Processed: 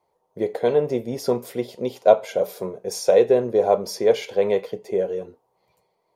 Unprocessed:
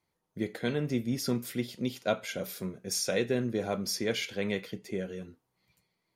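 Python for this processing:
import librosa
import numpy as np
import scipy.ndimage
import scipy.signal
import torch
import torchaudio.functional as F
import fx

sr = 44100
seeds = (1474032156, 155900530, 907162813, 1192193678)

y = fx.band_shelf(x, sr, hz=640.0, db=16.0, octaves=1.7)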